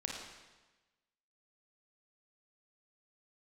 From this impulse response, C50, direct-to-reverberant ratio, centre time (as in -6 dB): 0.5 dB, -1.0 dB, 65 ms